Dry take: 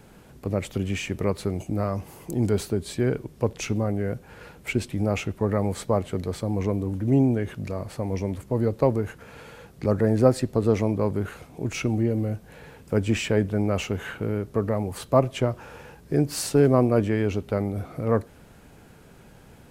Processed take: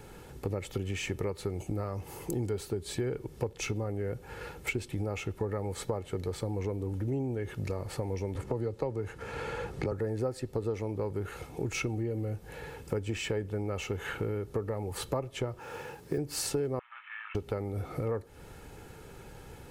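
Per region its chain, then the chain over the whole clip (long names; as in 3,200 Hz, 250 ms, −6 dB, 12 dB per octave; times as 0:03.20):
0:08.35–0:09.92: low-pass filter 9,800 Hz + multiband upward and downward compressor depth 40%
0:15.59–0:16.18: high-pass filter 120 Hz + noise that follows the level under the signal 30 dB
0:16.79–0:17.35: variable-slope delta modulation 16 kbit/s + Butterworth high-pass 1,100 Hz 48 dB per octave + high-frequency loss of the air 490 metres
whole clip: comb filter 2.3 ms, depth 45%; downward compressor 6 to 1, threshold −31 dBFS; level +1 dB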